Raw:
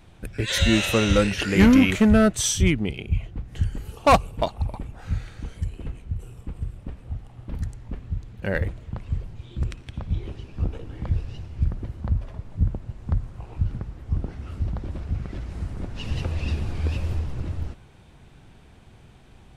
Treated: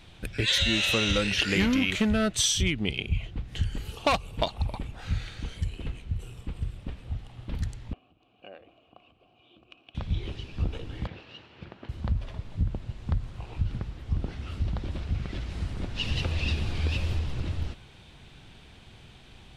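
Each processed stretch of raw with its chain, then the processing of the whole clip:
7.93–9.95 s: compression, threshold -29 dBFS + vowel filter a + small resonant body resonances 290/2900 Hz, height 12 dB, ringing for 25 ms
11.07–11.89 s: comb filter that takes the minimum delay 0.7 ms + band-pass 330–3100 Hz
whole clip: peaking EQ 3.5 kHz +10.5 dB 1.5 oct; compression 6:1, threshold -20 dBFS; trim -1.5 dB

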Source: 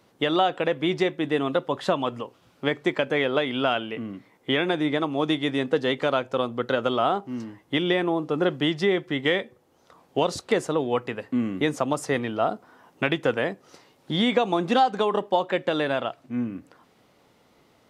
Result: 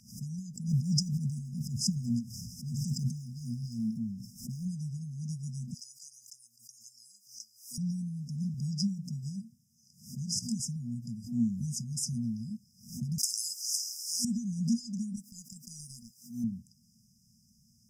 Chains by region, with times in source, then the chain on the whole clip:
0.68–4.68 s: phaser 1.7 Hz, delay 4.6 ms, feedback 30% + decay stretcher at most 44 dB/s
5.74–7.78 s: elliptic high-pass 1.1 kHz + treble shelf 5.9 kHz +9 dB
8.54–10.60 s: high-pass 97 Hz 24 dB/octave + hum notches 60/120/180/240/300/360/420 Hz
13.18–14.25 s: elliptic high-pass 890 Hz, stop band 70 dB + spectrum-flattening compressor 10:1
15.16–16.44 s: RIAA curve recording + transient shaper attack -10 dB, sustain -5 dB
whole clip: FFT band-reject 240–4900 Hz; peaking EQ 2.6 kHz +14.5 dB 2.1 oct; swell ahead of each attack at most 120 dB/s

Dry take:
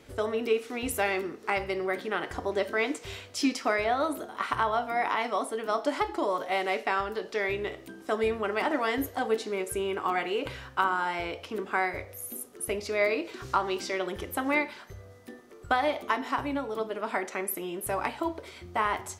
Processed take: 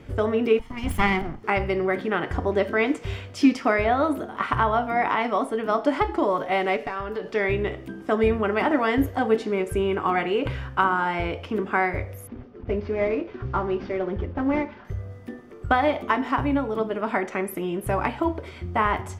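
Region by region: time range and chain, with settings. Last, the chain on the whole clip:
0.59–1.44 s: comb filter that takes the minimum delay 0.96 ms + three bands expanded up and down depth 40%
6.76–7.29 s: compression 2:1, threshold -36 dBFS + comb 6.9 ms, depth 30% + hard clipper -26 dBFS
12.27–14.85 s: CVSD coder 32 kbps + low-pass 1.1 kHz 6 dB/octave + comb of notches 160 Hz
whole clip: tone controls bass +10 dB, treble -11 dB; band-stop 4 kHz, Q 13; trim +5 dB

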